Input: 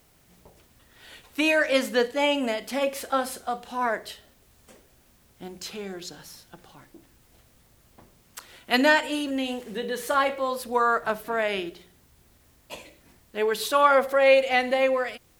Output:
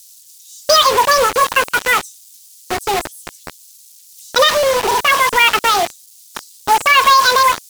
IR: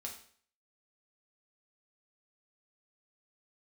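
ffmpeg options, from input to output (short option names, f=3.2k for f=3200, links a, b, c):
-filter_complex "[0:a]aeval=exprs='val(0)+0.5*0.0422*sgn(val(0))':c=same,afwtdn=0.0562,equalizer=f=10k:t=o:w=2.3:g=-14,acrossover=split=3900[a][b];[b]acompressor=threshold=-54dB:ratio=4:attack=1:release=60[c];[a][c]amix=inputs=2:normalize=0,acrossover=split=3000[d][e];[d]acrusher=bits=4:mix=0:aa=0.000001[f];[e]aeval=exprs='0.0794*sin(PI/2*3.16*val(0)/0.0794)':c=same[g];[f][g]amix=inputs=2:normalize=0,asetrate=88200,aresample=44100,alimiter=level_in=12.5dB:limit=-1dB:release=50:level=0:latency=1,volume=-1dB"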